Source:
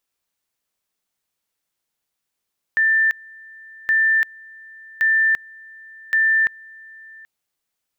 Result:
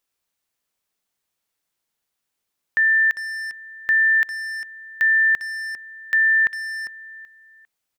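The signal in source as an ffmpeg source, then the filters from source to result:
-f lavfi -i "aevalsrc='pow(10,(-13.5-25.5*gte(mod(t,1.12),0.34))/20)*sin(2*PI*1780*t)':d=4.48:s=44100"
-filter_complex "[0:a]asplit=2[a][b];[b]adelay=400,highpass=300,lowpass=3.4k,asoftclip=type=hard:threshold=-22dB,volume=-8dB[c];[a][c]amix=inputs=2:normalize=0"

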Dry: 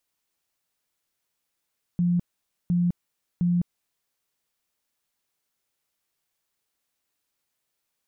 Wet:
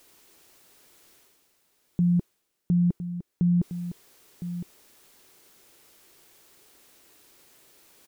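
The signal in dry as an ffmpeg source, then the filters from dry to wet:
-f lavfi -i "aevalsrc='0.112*sin(2*PI*175*mod(t,0.71))*lt(mod(t,0.71),36/175)':d=2.13:s=44100"
-af "equalizer=f=370:w=1.6:g=9,areverse,acompressor=mode=upward:threshold=-39dB:ratio=2.5,areverse,aecho=1:1:1010:0.266"

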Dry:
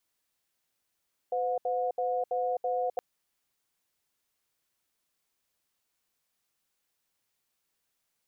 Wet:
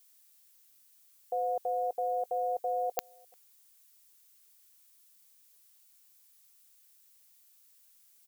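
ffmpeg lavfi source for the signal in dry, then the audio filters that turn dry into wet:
-f lavfi -i "aevalsrc='0.0335*(sin(2*PI*507*t)+sin(2*PI*722*t))*clip(min(mod(t,0.33),0.26-mod(t,0.33))/0.005,0,1)':d=1.67:s=44100"
-filter_complex "[0:a]equalizer=f=540:w=2.2:g=-3.5,crystalizer=i=4.5:c=0,asplit=2[a][b];[b]adelay=349.9,volume=-28dB,highshelf=f=4k:g=-7.87[c];[a][c]amix=inputs=2:normalize=0"

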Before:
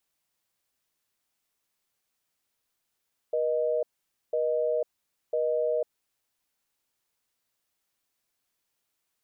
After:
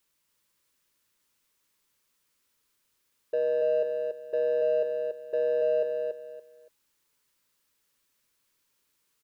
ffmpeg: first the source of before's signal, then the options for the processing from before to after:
-f lavfi -i "aevalsrc='0.0473*(sin(2*PI*480*t)+sin(2*PI*620*t))*clip(min(mod(t,1),0.5-mod(t,1))/0.005,0,1)':d=2.66:s=44100"
-filter_complex "[0:a]asplit=2[a][b];[b]asoftclip=type=tanh:threshold=-32.5dB,volume=-4dB[c];[a][c]amix=inputs=2:normalize=0,asuperstop=centerf=720:order=4:qfactor=3.3,aecho=1:1:284|568|852:0.596|0.149|0.0372"

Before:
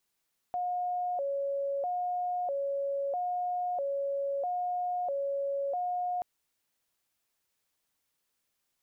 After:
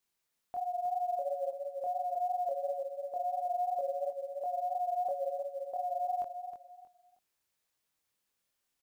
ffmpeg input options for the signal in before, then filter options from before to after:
-f lavfi -i "aevalsrc='0.0355*sin(2*PI*(637.5*t+80.5/0.77*(0.5-abs(mod(0.77*t,1)-0.5))))':d=5.68:s=44100"
-filter_complex "[0:a]asplit=2[a][b];[b]aecho=0:1:315|630|945:0.398|0.104|0.0269[c];[a][c]amix=inputs=2:normalize=0,flanger=delay=22.5:depth=3.9:speed=2.9,acrusher=bits=9:mode=log:mix=0:aa=0.000001"

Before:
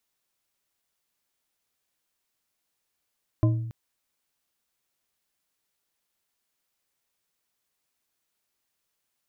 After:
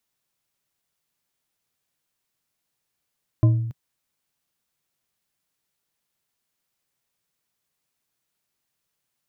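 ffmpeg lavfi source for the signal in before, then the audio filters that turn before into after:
-f lavfi -i "aevalsrc='0.158*pow(10,-3*t/0.9)*sin(2*PI*115*t)+0.0794*pow(10,-3*t/0.443)*sin(2*PI*317.1*t)+0.0398*pow(10,-3*t/0.276)*sin(2*PI*621.5*t)+0.02*pow(10,-3*t/0.194)*sin(2*PI*1027.3*t)':d=0.28:s=44100"
-af "equalizer=f=140:t=o:w=0.97:g=7.5"

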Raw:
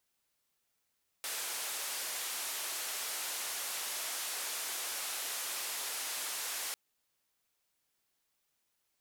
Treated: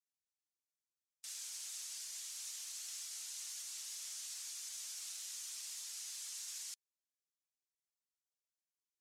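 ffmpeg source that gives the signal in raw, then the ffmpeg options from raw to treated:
-f lavfi -i "anoisesrc=c=white:d=5.5:r=44100:seed=1,highpass=f=520,lowpass=f=13000,volume=-31.2dB"
-af "afftdn=nr=14:nf=-48,alimiter=level_in=9.5dB:limit=-24dB:level=0:latency=1,volume=-9.5dB,bandpass=f=6.5k:t=q:w=1.6:csg=0"

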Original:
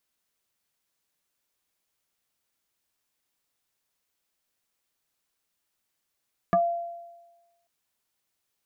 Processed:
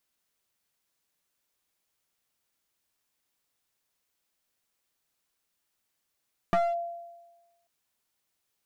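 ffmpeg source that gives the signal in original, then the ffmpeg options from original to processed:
-f lavfi -i "aevalsrc='0.15*pow(10,-3*t/1.19)*sin(2*PI*686*t+1.5*pow(10,-3*t/0.13)*sin(2*PI*0.73*686*t))':d=1.14:s=44100"
-af "aeval=exprs='clip(val(0),-1,0.0422)':c=same"

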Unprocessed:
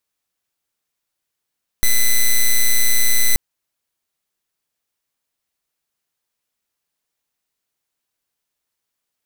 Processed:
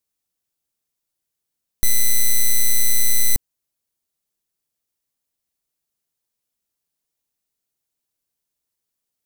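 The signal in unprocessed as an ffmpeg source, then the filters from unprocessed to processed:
-f lavfi -i "aevalsrc='0.266*(2*lt(mod(2010*t,1),0.05)-1)':d=1.53:s=44100"
-af "equalizer=f=1.6k:w=0.41:g=-8"

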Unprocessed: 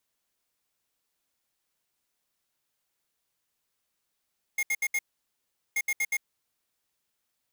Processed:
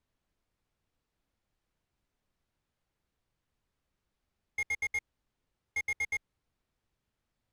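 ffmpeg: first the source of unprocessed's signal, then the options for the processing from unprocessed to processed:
-f lavfi -i "aevalsrc='0.0447*(2*lt(mod(2140*t,1),0.5)-1)*clip(min(mod(mod(t,1.18),0.12),0.05-mod(mod(t,1.18),0.12))/0.005,0,1)*lt(mod(t,1.18),0.48)':d=2.36:s=44100"
-af "aemphasis=mode=reproduction:type=riaa"

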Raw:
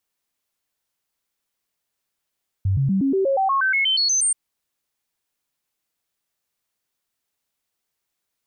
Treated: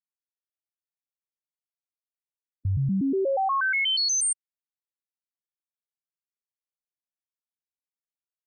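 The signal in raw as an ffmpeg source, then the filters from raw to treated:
-f lavfi -i "aevalsrc='0.15*clip(min(mod(t,0.12),0.12-mod(t,0.12))/0.005,0,1)*sin(2*PI*96.4*pow(2,floor(t/0.12)/2)*mod(t,0.12))':d=1.68:s=44100"
-af "afftfilt=real='re*gte(hypot(re,im),0.0708)':imag='im*gte(hypot(re,im),0.0708)':win_size=1024:overlap=0.75,alimiter=limit=-21dB:level=0:latency=1:release=39"

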